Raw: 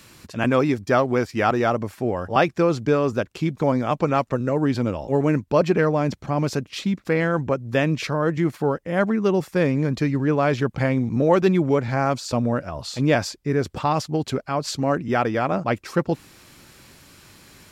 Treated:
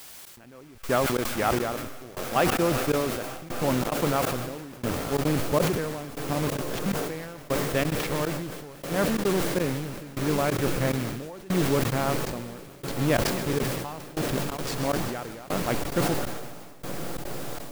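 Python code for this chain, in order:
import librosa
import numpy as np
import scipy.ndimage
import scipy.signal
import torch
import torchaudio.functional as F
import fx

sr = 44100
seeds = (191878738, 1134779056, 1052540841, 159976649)

p1 = fx.delta_hold(x, sr, step_db=-22.0)
p2 = p1 + fx.echo_diffused(p1, sr, ms=1093, feedback_pct=77, wet_db=-11, dry=0)
p3 = fx.dmg_noise_colour(p2, sr, seeds[0], colour='white', level_db=-40.0)
p4 = fx.echo_wet_highpass(p3, sr, ms=130, feedback_pct=81, hz=1500.0, wet_db=-10)
p5 = fx.step_gate(p4, sr, bpm=180, pattern='xxx.......xxxx.x', floor_db=-24.0, edge_ms=4.5)
p6 = fx.sustainer(p5, sr, db_per_s=35.0)
y = p6 * librosa.db_to_amplitude(-5.0)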